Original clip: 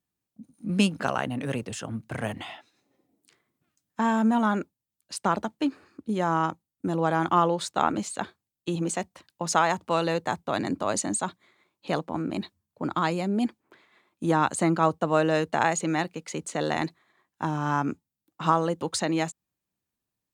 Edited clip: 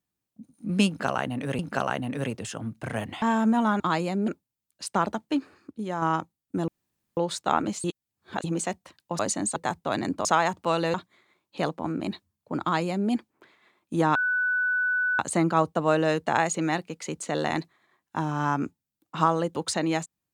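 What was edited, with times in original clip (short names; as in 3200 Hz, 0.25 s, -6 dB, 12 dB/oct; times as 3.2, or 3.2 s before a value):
0.87–1.59 loop, 2 plays
2.5–4 cut
6.01–6.32 gain -5 dB
6.98–7.47 room tone
8.14–8.74 reverse
9.49–10.18 swap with 10.87–11.24
12.92–13.4 copy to 4.58
14.45 add tone 1490 Hz -22 dBFS 1.04 s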